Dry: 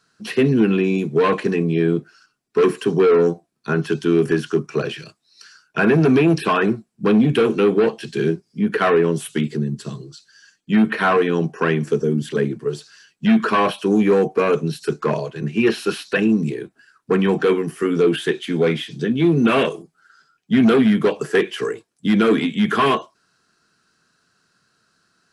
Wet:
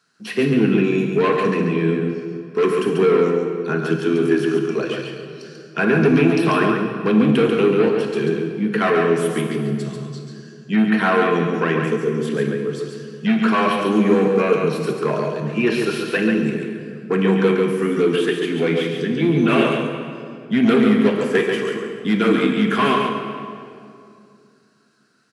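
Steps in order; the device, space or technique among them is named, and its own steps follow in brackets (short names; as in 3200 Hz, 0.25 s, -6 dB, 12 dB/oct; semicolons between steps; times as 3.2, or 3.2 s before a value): PA in a hall (HPF 120 Hz; bell 2200 Hz +3 dB 0.58 oct; echo 0.14 s -5 dB; reverb RT60 2.5 s, pre-delay 18 ms, DRR 5 dB); gain -2.5 dB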